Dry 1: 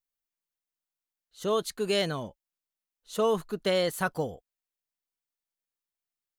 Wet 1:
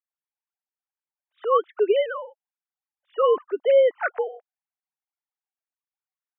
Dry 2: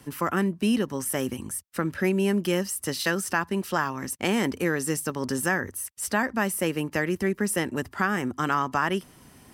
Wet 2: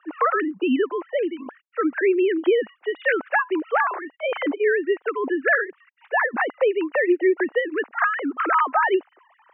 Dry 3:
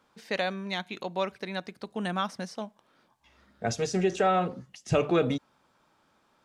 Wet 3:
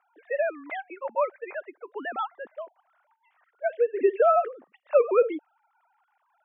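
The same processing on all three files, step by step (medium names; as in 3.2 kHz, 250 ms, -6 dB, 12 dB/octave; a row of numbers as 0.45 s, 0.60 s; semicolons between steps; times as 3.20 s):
formants replaced by sine waves; three-band isolator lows -23 dB, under 330 Hz, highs -21 dB, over 2.2 kHz; peak normalisation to -9 dBFS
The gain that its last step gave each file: +8.5 dB, +8.0 dB, +5.0 dB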